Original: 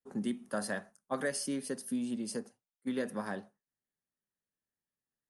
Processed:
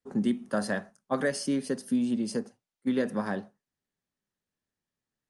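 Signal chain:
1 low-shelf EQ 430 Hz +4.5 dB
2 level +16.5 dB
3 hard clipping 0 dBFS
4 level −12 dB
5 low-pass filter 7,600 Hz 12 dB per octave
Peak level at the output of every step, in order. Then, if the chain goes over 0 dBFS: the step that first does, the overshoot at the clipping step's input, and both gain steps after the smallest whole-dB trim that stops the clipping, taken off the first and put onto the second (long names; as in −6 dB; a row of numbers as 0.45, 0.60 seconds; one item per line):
−20.0, −3.5, −3.5, −15.5, −15.5 dBFS
no step passes full scale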